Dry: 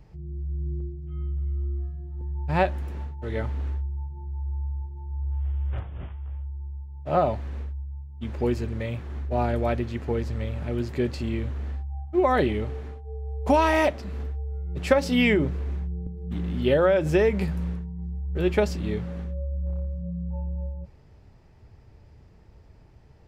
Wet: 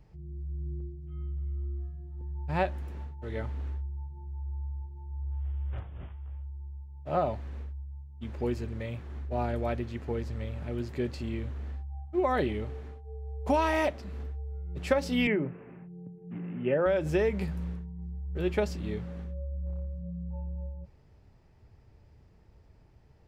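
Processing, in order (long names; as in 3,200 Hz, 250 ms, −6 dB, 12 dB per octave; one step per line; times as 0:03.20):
0:15.27–0:16.86: Chebyshev band-pass filter 110–2,700 Hz, order 5
level −6 dB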